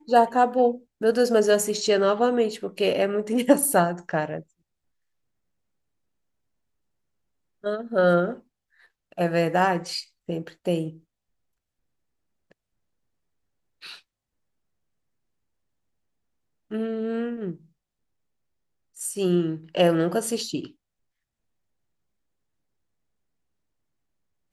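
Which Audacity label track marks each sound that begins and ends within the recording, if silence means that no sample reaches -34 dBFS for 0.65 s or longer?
7.640000	8.350000	sound
9.180000	10.900000	sound
13.830000	13.950000	sound
16.710000	17.520000	sound
18.990000	20.660000	sound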